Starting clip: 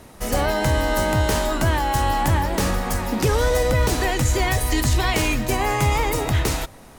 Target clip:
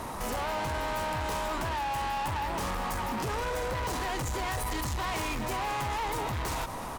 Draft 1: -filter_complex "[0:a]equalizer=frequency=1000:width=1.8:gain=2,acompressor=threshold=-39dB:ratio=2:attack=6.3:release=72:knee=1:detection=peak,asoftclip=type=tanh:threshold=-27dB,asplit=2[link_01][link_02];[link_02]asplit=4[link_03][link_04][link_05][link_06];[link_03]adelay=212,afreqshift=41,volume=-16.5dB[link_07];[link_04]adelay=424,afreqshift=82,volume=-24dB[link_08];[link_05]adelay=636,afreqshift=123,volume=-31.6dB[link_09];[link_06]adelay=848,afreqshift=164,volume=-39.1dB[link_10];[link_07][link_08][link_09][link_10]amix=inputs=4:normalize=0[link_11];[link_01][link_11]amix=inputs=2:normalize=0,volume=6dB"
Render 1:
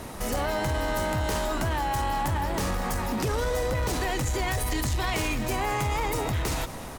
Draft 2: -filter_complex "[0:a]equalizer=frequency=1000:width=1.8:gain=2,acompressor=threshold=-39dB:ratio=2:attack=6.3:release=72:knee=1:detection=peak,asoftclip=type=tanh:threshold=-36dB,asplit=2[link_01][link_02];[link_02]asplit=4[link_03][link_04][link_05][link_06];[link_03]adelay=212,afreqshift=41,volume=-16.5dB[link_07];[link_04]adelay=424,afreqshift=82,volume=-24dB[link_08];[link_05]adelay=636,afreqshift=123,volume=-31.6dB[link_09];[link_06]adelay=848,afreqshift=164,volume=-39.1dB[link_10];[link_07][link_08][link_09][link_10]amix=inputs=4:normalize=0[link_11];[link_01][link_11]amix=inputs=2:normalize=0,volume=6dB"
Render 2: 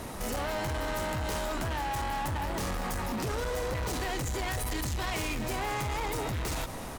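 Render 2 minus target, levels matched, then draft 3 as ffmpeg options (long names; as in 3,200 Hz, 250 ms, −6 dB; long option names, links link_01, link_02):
1,000 Hz band −3.0 dB
-filter_complex "[0:a]equalizer=frequency=1000:width=1.8:gain=11.5,acompressor=threshold=-39dB:ratio=2:attack=6.3:release=72:knee=1:detection=peak,asoftclip=type=tanh:threshold=-36dB,asplit=2[link_01][link_02];[link_02]asplit=4[link_03][link_04][link_05][link_06];[link_03]adelay=212,afreqshift=41,volume=-16.5dB[link_07];[link_04]adelay=424,afreqshift=82,volume=-24dB[link_08];[link_05]adelay=636,afreqshift=123,volume=-31.6dB[link_09];[link_06]adelay=848,afreqshift=164,volume=-39.1dB[link_10];[link_07][link_08][link_09][link_10]amix=inputs=4:normalize=0[link_11];[link_01][link_11]amix=inputs=2:normalize=0,volume=6dB"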